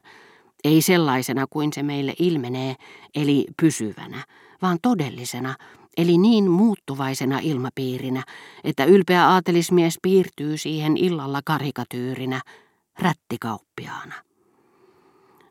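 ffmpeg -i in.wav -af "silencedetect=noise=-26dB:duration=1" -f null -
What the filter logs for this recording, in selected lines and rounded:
silence_start: 14.15
silence_end: 15.50 | silence_duration: 1.35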